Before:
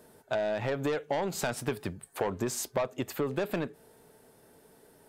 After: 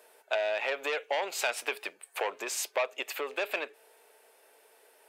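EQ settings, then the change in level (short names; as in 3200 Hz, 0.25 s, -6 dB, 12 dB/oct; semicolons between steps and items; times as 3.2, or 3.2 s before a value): HPF 470 Hz 24 dB/oct; dynamic EQ 3300 Hz, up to +3 dB, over -49 dBFS, Q 0.71; bell 2500 Hz +9 dB 0.6 oct; 0.0 dB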